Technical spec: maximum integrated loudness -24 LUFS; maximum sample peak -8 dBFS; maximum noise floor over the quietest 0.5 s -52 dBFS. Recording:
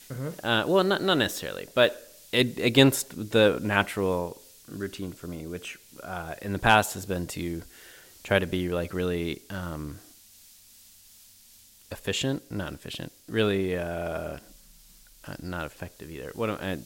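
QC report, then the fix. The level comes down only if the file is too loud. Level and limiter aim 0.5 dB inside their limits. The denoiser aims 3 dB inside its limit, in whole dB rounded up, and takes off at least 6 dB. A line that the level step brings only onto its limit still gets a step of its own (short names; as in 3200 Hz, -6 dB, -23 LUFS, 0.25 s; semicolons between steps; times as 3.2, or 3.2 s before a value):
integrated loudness -27.0 LUFS: OK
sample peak -5.0 dBFS: fail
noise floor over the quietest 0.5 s -55 dBFS: OK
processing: limiter -8.5 dBFS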